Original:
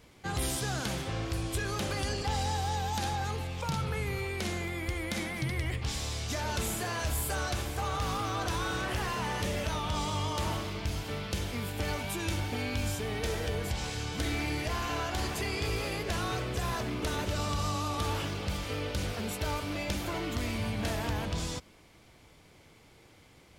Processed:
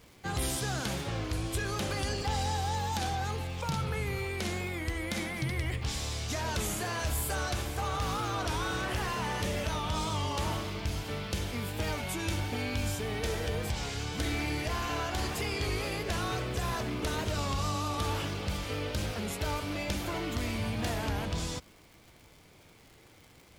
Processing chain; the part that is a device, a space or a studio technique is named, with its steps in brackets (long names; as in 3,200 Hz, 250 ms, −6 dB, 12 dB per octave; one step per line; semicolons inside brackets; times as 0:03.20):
warped LP (wow of a warped record 33 1/3 rpm, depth 100 cents; surface crackle 110 per second −45 dBFS; white noise bed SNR 41 dB)